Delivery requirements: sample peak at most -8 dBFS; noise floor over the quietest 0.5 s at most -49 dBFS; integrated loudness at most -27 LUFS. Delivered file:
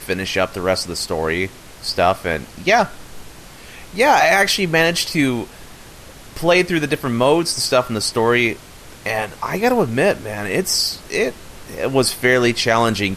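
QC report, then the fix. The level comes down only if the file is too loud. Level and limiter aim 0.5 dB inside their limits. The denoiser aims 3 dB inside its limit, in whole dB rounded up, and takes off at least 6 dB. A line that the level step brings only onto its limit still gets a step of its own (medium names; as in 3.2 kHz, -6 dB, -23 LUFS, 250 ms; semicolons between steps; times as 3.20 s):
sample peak -3.5 dBFS: fail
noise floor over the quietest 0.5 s -39 dBFS: fail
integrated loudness -18.0 LUFS: fail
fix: noise reduction 6 dB, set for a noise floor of -39 dBFS; trim -9.5 dB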